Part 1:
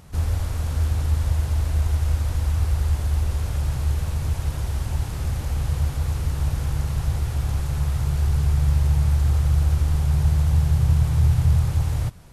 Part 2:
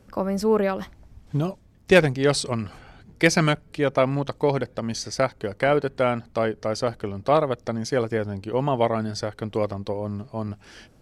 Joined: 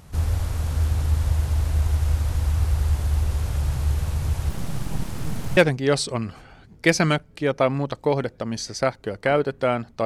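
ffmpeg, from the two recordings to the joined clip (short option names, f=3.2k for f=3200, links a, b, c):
-filter_complex "[0:a]asettb=1/sr,asplit=3[a][b][c];[a]atrim=end=4.494[d];[b]atrim=start=4.49:end=5.57,asetpts=PTS-STARTPTS,afade=t=in:d=0.004:c=qsin,afade=t=out:st=1.076:d=0.004:c=qsin,aeval=exprs='abs(val(0))':c=same[e];[c]atrim=start=5.566[f];[d][e]acrossfade=d=0.004:c1=hsin:c2=qsin[g];[g][f]acrossfade=d=0.004:c1=qsin:c2=hsin,apad=whole_dur=10.05,atrim=end=10.05,atrim=end=5.572[h];[1:a]atrim=start=1.938:end=6.42[i];[h][i]acrossfade=d=0.004:c1=hsin:c2=hsin"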